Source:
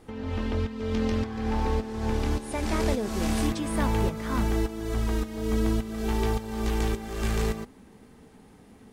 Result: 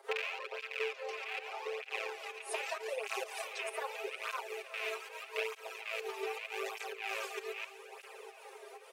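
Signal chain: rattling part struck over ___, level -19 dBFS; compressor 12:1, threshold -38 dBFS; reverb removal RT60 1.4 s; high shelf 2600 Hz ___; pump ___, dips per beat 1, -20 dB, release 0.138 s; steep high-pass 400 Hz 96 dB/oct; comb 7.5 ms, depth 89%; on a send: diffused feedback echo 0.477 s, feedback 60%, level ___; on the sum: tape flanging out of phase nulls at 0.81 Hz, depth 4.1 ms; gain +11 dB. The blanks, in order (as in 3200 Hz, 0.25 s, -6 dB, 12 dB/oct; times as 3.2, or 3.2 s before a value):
-35 dBFS, -3.5 dB, 130 bpm, -13.5 dB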